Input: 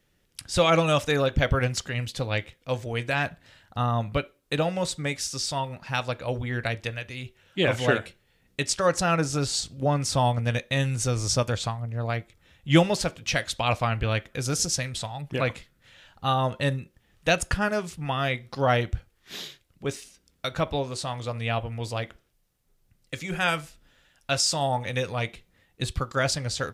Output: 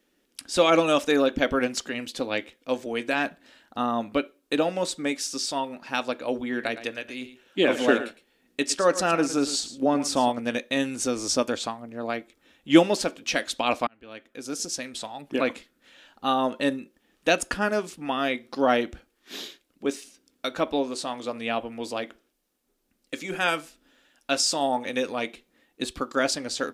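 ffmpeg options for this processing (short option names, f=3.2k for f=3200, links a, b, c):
-filter_complex "[0:a]asettb=1/sr,asplit=3[a][b][c];[a]atrim=end=6.404[d];[b]atrim=start=6.4:end=10.32,asetpts=PTS-STARTPTS,afade=t=in:d=0.004:c=qsin,afade=t=out:st=3.916:d=0.004:c=qsin,aecho=1:1:111:0.211,atrim=end_sample=172872[e];[c]atrim=start=10.316[f];[d][e]acrossfade=d=0.004:c1=hsin:c2=qsin[g];[g][f]acrossfade=d=0.004:c1=qsin:c2=hsin,asplit=2[h][i];[h]atrim=end=13.87,asetpts=PTS-STARTPTS,afade=t=out:st=13.866:d=0.004:c=hsin[j];[i]atrim=start=13.87,asetpts=PTS-STARTPTS,afade=t=in:d=1.44[k];[j][k]concat=n=2:v=0:a=1,lowshelf=f=180:t=q:w=3:g=-13,bandreject=f=2k:w=23"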